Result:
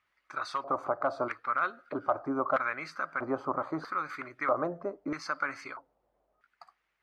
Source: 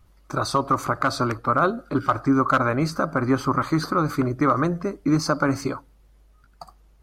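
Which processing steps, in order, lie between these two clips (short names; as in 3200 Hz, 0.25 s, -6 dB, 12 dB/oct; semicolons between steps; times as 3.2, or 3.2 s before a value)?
LFO band-pass square 0.78 Hz 660–2000 Hz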